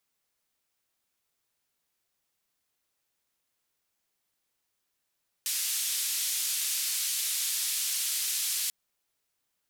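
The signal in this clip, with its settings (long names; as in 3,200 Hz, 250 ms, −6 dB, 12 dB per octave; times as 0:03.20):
band-limited noise 3,100–13,000 Hz, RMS −30.5 dBFS 3.24 s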